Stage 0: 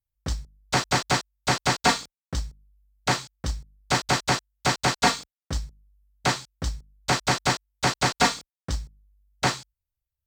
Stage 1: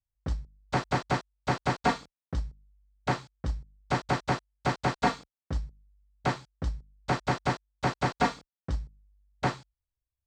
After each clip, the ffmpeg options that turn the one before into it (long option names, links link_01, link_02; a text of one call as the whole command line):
ffmpeg -i in.wav -af "lowpass=frequency=1100:poles=1,volume=-2dB" out.wav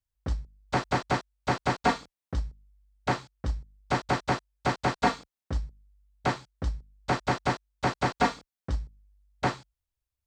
ffmpeg -i in.wav -af "equalizer=frequency=150:width_type=o:width=0.45:gain=-4.5,volume=1.5dB" out.wav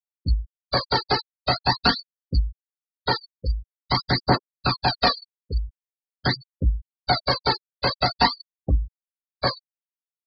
ffmpeg -i in.wav -af "lowpass=frequency=4600:width_type=q:width=7.8,aphaser=in_gain=1:out_gain=1:delay=2.5:decay=0.55:speed=0.46:type=triangular,afftfilt=real='re*gte(hypot(re,im),0.0708)':imag='im*gte(hypot(re,im),0.0708)':win_size=1024:overlap=0.75,volume=2.5dB" out.wav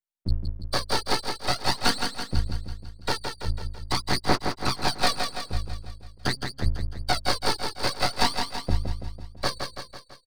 ffmpeg -i in.wav -af "aeval=exprs='max(val(0),0)':channel_layout=same,aecho=1:1:166|332|498|664|830|996|1162:0.501|0.276|0.152|0.0834|0.0459|0.0252|0.0139" out.wav